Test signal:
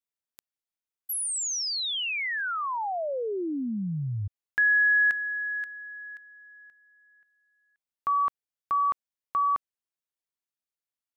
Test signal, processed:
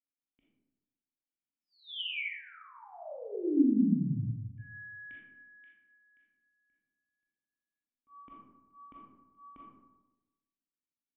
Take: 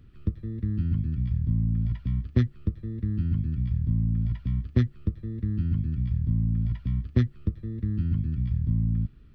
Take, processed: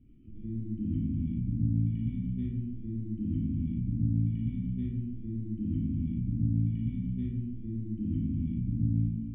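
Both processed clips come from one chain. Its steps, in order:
low-pass that shuts in the quiet parts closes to 2,300 Hz
volume swells 106 ms
formant resonators in series i
comb and all-pass reverb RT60 1.1 s, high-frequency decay 0.4×, pre-delay 0 ms, DRR −6 dB
level +2 dB

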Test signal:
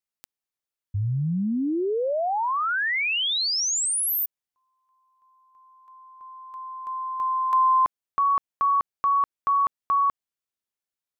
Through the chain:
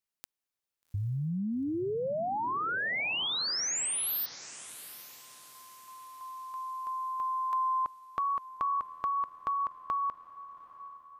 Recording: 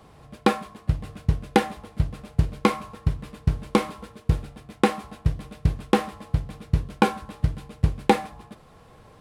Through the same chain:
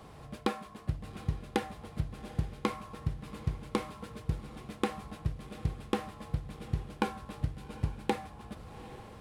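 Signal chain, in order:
downward compressor 2 to 1, threshold −37 dBFS
feedback delay with all-pass diffusion 799 ms, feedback 42%, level −15 dB

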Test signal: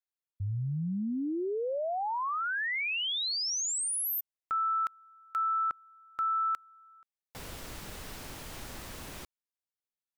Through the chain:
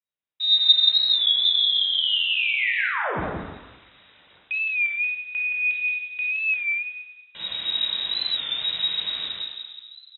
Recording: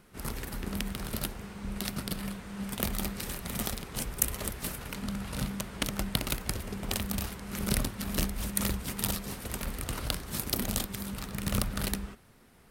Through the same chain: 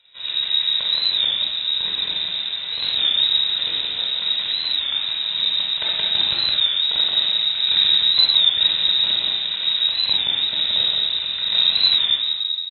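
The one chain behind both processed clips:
mains-hum notches 50/100/150/200/250 Hz
on a send: single-tap delay 174 ms −4 dB
on the sum: hard clipping −15.5 dBFS
low-shelf EQ 200 Hz +2.5 dB
in parallel at −3.5 dB: bit reduction 7 bits
on the sum: rectangular room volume 2,000 cubic metres, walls mixed, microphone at 4.5 metres
dynamic equaliser 3,000 Hz, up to −3 dB, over −37 dBFS, Q 1.5
voice inversion scrambler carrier 3,800 Hz
high-pass filter 53 Hz
wow of a warped record 33 1/3 rpm, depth 100 cents
level −4.5 dB

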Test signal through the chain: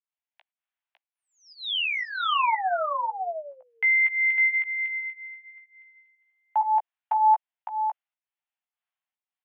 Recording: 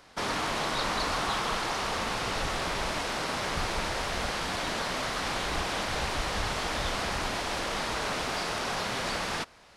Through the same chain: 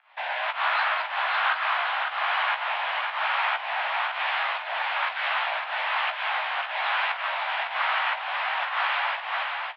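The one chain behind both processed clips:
rotating-speaker cabinet horn 1.1 Hz
fake sidechain pumping 118 BPM, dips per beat 1, −19 dB, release 195 ms
double-tracking delay 16 ms −6 dB
single-tap delay 555 ms −4.5 dB
single-sideband voice off tune +320 Hz 350–2,900 Hz
level +7.5 dB

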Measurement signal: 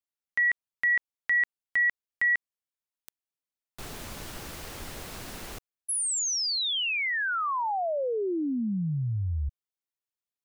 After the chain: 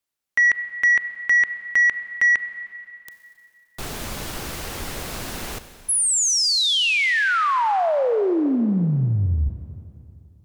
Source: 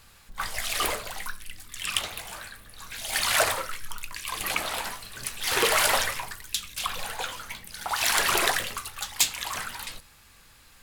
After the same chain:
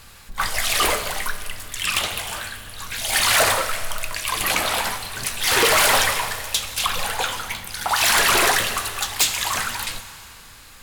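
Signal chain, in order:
four-comb reverb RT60 2.7 s, combs from 30 ms, DRR 11.5 dB
sine wavefolder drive 12 dB, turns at −4.5 dBFS
level −7 dB

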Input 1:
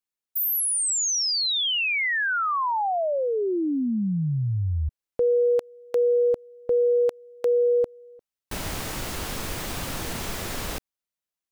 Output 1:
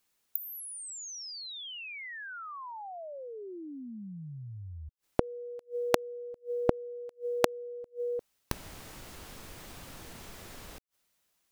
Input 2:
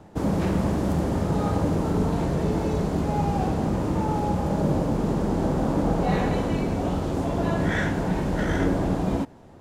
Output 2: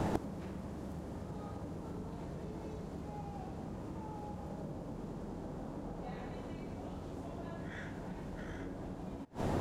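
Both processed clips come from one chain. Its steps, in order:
downward compressor 4 to 1, threshold −25 dBFS
gate with flip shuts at −31 dBFS, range −30 dB
level +14.5 dB

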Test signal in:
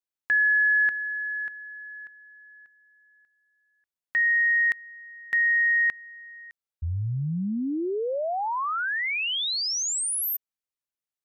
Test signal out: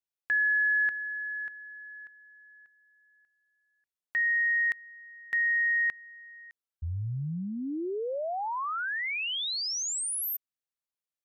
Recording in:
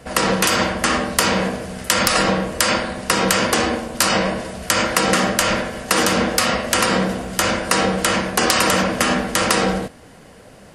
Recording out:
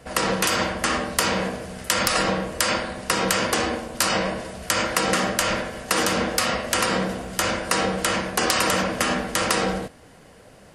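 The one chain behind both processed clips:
parametric band 220 Hz −2.5 dB 0.58 octaves
level −4.5 dB

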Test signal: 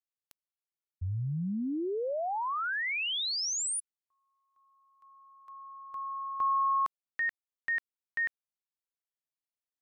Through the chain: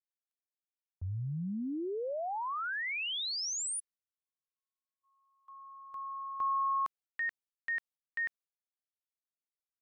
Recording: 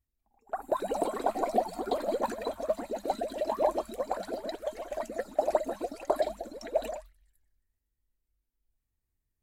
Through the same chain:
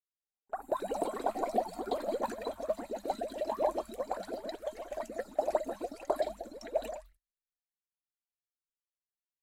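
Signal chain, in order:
noise gate −56 dBFS, range −37 dB
level −3.5 dB

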